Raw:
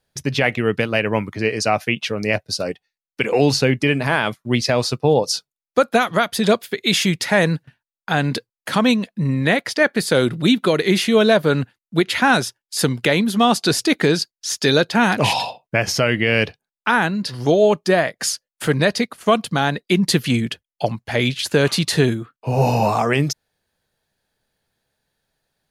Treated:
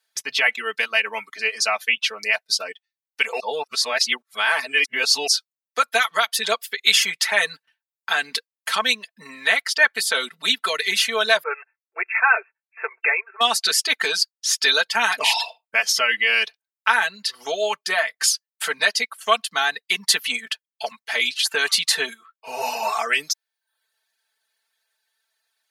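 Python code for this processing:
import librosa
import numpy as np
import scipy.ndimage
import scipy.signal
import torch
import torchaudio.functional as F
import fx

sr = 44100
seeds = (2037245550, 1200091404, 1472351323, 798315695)

y = fx.brickwall_bandpass(x, sr, low_hz=340.0, high_hz=2700.0, at=(11.43, 13.41))
y = fx.edit(y, sr, fx.reverse_span(start_s=3.4, length_s=1.87), tone=tone)
y = fx.dereverb_blind(y, sr, rt60_s=0.53)
y = scipy.signal.sosfilt(scipy.signal.butter(2, 1200.0, 'highpass', fs=sr, output='sos'), y)
y = y + 0.87 * np.pad(y, (int(4.5 * sr / 1000.0), 0))[:len(y)]
y = y * librosa.db_to_amplitude(1.0)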